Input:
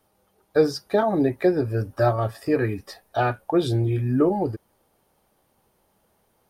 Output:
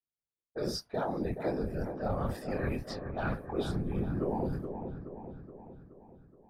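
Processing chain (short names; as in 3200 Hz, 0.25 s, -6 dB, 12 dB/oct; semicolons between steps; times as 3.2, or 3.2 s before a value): expander -45 dBFS; chorus voices 4, 0.5 Hz, delay 24 ms, depth 1.1 ms; reverse; compressor 10:1, threshold -30 dBFS, peak gain reduction 16 dB; reverse; whisperiser; low-pass opened by the level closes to 390 Hz, open at -33 dBFS; dark delay 0.423 s, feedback 55%, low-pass 1500 Hz, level -7.5 dB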